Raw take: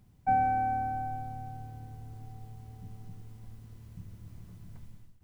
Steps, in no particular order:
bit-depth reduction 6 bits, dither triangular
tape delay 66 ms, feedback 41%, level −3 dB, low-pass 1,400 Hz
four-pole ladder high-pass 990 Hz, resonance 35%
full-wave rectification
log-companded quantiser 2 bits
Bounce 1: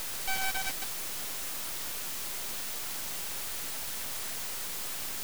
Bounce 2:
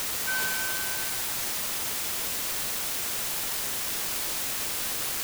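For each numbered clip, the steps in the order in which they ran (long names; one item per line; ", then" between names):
tape delay, then four-pole ladder high-pass, then log-companded quantiser, then bit-depth reduction, then full-wave rectification
full-wave rectification, then four-pole ladder high-pass, then bit-depth reduction, then tape delay, then log-companded quantiser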